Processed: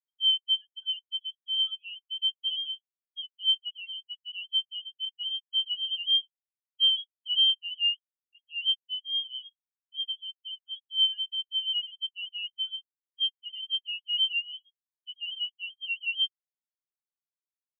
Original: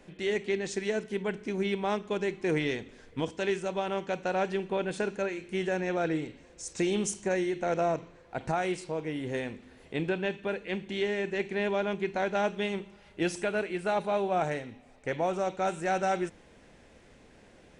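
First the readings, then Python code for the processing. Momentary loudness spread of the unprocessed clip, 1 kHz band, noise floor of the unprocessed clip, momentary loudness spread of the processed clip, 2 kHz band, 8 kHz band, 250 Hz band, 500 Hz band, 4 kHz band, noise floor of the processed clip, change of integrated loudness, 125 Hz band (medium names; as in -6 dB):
8 LU, under -40 dB, -57 dBFS, 15 LU, -3.5 dB, under -35 dB, under -40 dB, under -40 dB, +19.5 dB, under -85 dBFS, +3.0 dB, under -40 dB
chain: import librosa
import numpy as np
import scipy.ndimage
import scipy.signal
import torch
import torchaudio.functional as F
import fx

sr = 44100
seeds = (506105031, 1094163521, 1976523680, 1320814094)

y = fx.dereverb_blind(x, sr, rt60_s=0.65)
y = scipy.signal.sosfilt(scipy.signal.butter(4, 260.0, 'highpass', fs=sr, output='sos'), y)
y = fx.tilt_eq(y, sr, slope=-2.0)
y = fx.freq_invert(y, sr, carrier_hz=3500)
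y = fx.leveller(y, sr, passes=5)
y = fx.spectral_expand(y, sr, expansion=4.0)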